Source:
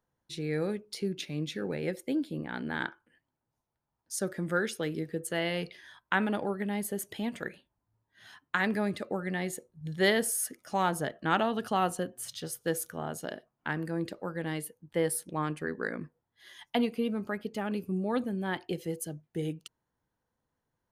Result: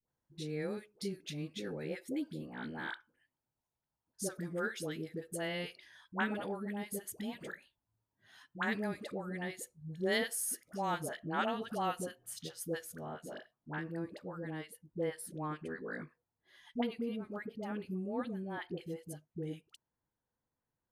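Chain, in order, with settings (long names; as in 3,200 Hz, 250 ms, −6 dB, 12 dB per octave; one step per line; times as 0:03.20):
high-shelf EQ 3,800 Hz +2 dB, from 0:12.76 −6.5 dB
all-pass dispersion highs, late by 87 ms, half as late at 690 Hz
level −7 dB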